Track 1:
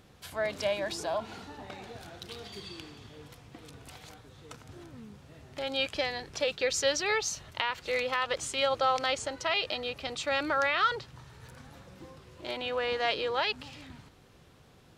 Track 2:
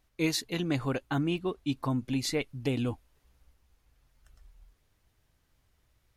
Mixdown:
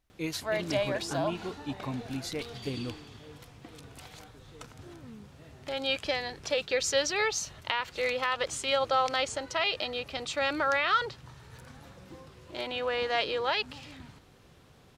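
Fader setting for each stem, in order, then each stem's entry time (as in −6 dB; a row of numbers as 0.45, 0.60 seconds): +0.5, −6.0 decibels; 0.10, 0.00 seconds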